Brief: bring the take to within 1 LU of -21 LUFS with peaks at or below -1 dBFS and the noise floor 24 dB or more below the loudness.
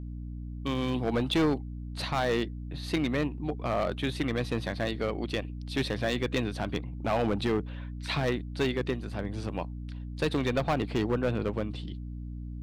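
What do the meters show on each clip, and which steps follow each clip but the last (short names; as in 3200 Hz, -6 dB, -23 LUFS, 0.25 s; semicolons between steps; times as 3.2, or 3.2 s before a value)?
clipped 1.3%; flat tops at -21.0 dBFS; hum 60 Hz; harmonics up to 300 Hz; hum level -36 dBFS; loudness -31.0 LUFS; peak -21.0 dBFS; loudness target -21.0 LUFS
-> clip repair -21 dBFS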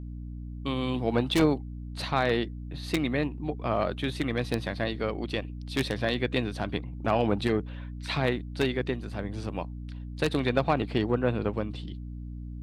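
clipped 0.0%; hum 60 Hz; harmonics up to 300 Hz; hum level -35 dBFS
-> de-hum 60 Hz, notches 5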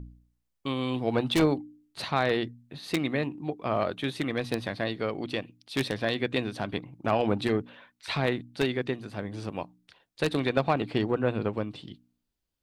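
hum none; loudness -30.0 LUFS; peak -11.0 dBFS; loudness target -21.0 LUFS
-> gain +9 dB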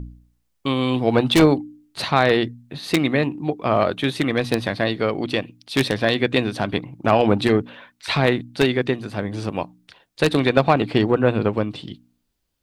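loudness -21.0 LUFS; peak -2.0 dBFS; noise floor -71 dBFS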